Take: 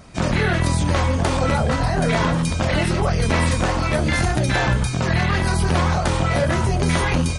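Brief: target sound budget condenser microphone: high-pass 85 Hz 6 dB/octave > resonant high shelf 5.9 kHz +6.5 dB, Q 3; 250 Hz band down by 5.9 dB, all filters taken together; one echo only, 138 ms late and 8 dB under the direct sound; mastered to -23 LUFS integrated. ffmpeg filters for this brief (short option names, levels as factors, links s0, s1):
-af "highpass=f=85:p=1,equalizer=f=250:t=o:g=-8.5,highshelf=f=5900:t=q:w=3:g=6.5,aecho=1:1:138:0.398,volume=0.794"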